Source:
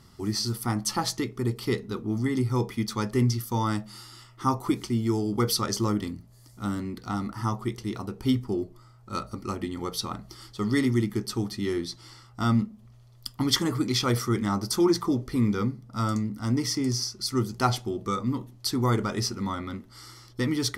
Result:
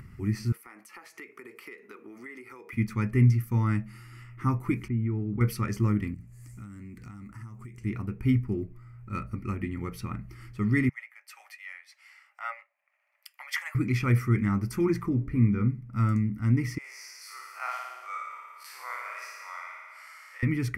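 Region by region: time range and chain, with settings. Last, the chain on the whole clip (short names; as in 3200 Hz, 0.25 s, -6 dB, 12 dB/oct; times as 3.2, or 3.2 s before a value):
0.52–2.73 HPF 410 Hz 24 dB/oct + compressor, threshold -39 dBFS
4.88–5.41 compressor 2.5:1, threshold -27 dBFS + air absorption 430 m
6.14–7.85 block floating point 7-bit + bell 7600 Hz +15 dB 0.93 oct + compressor 16:1, threshold -41 dBFS
10.89–13.75 rippled Chebyshev high-pass 560 Hz, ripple 6 dB + three-band expander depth 70%
15.09–15.68 high shelf 2200 Hz -10.5 dB + de-hum 71.47 Hz, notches 33
16.78–20.43 time blur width 89 ms + steep high-pass 610 Hz 48 dB/oct + flutter echo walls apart 9.8 m, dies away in 1.3 s
whole clip: EQ curve 140 Hz 0 dB, 770 Hz -18 dB, 2400 Hz +1 dB, 3500 Hz -26 dB, 14000 Hz -13 dB; upward compressor, threshold -46 dBFS; gain +5 dB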